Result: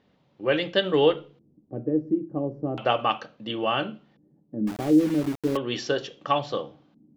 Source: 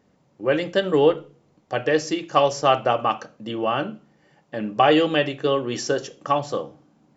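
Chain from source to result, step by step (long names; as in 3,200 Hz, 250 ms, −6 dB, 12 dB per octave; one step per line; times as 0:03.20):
auto-filter low-pass square 0.36 Hz 280–3,600 Hz
0:04.67–0:05.57: centre clipping without the shift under −29 dBFS
level −3 dB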